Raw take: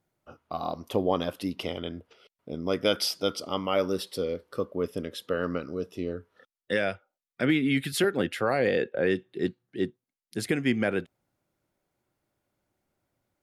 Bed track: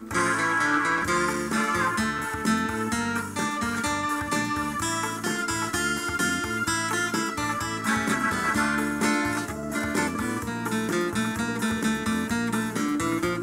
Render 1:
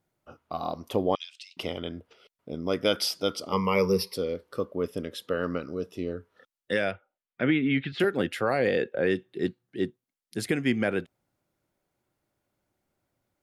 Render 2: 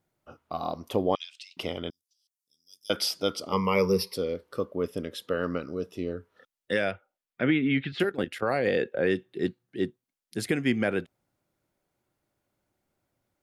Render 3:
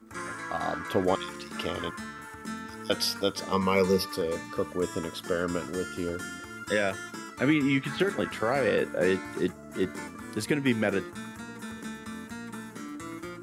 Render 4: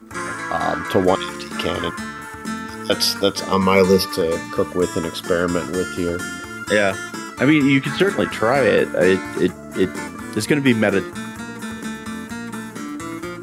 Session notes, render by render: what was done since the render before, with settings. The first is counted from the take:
1.15–1.57 s: Chebyshev band-pass 2.4–7.8 kHz, order 3; 3.52–4.14 s: rippled EQ curve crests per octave 0.85, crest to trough 18 dB; 6.91–8.00 s: low-pass 3.3 kHz 24 dB/octave
1.90–2.90 s: inverse Chebyshev high-pass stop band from 2.2 kHz, stop band 50 dB; 8.03–8.67 s: level held to a coarse grid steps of 13 dB
add bed track -13.5 dB
trim +10 dB; peak limiter -3 dBFS, peak gain reduction 2 dB

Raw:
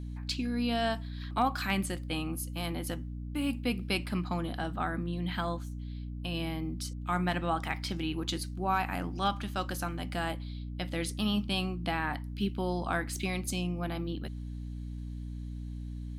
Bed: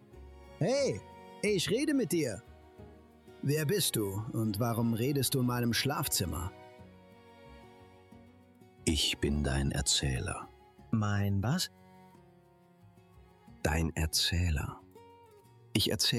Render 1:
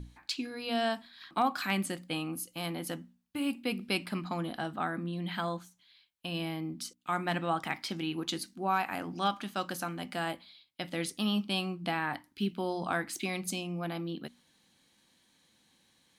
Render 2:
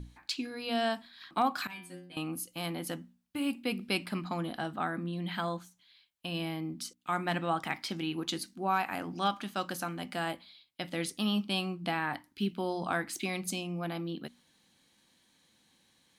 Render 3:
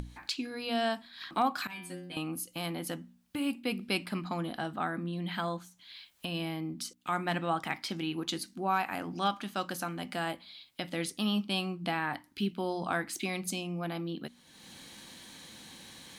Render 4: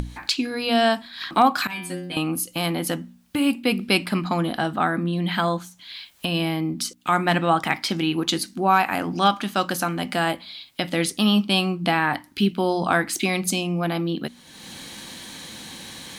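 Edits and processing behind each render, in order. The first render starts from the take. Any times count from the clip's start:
hum notches 60/120/180/240/300 Hz
1.67–2.17 s: inharmonic resonator 88 Hz, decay 0.66 s, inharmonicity 0.002
upward compressor, threshold -34 dBFS
trim +11.5 dB

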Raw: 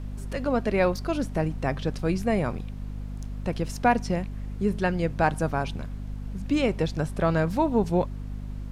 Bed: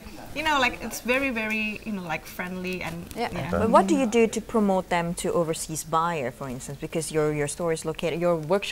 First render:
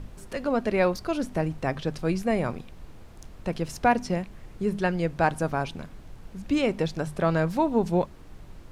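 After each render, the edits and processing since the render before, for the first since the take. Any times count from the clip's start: hum notches 50/100/150/200/250 Hz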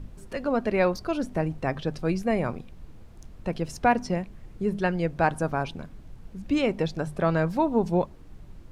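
noise reduction 6 dB, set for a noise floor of -46 dBFS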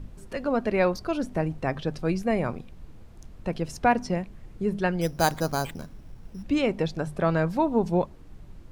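5.01–6.43 s: careless resampling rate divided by 8×, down none, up hold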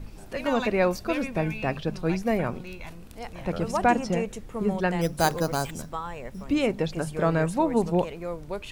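add bed -10.5 dB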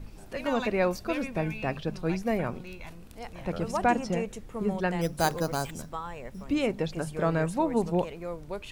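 trim -3 dB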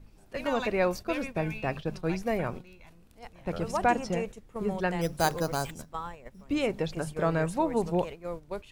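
dynamic bell 230 Hz, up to -4 dB, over -39 dBFS, Q 2.2; gate -37 dBFS, range -10 dB

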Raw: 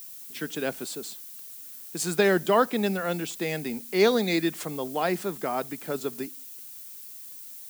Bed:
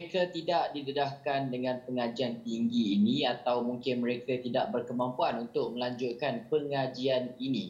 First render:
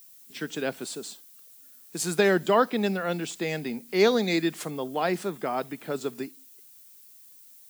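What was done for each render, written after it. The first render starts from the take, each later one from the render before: noise print and reduce 9 dB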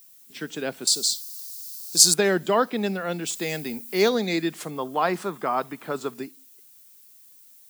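0.87–2.14 s: resonant high shelf 3.2 kHz +13.5 dB, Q 3; 3.25–4.08 s: treble shelf 4.1 kHz -> 8.2 kHz +11.5 dB; 4.76–6.14 s: peaking EQ 1.1 kHz +9.5 dB 0.81 oct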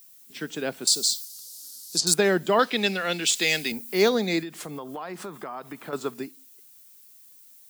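1.25–2.07 s: low-pass that closes with the level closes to 1.8 kHz, closed at -12 dBFS; 2.59–3.72 s: frequency weighting D; 4.40–5.93 s: compression, threshold -32 dBFS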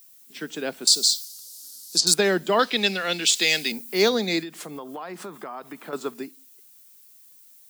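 high-pass 160 Hz 24 dB/octave; dynamic bell 4.4 kHz, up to +5 dB, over -39 dBFS, Q 1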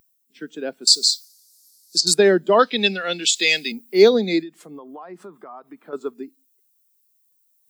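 reverse; upward compressor, threshold -42 dBFS; reverse; spectral contrast expander 1.5:1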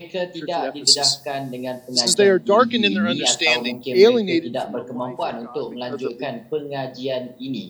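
add bed +4 dB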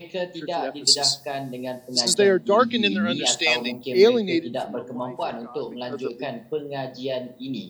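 trim -3 dB

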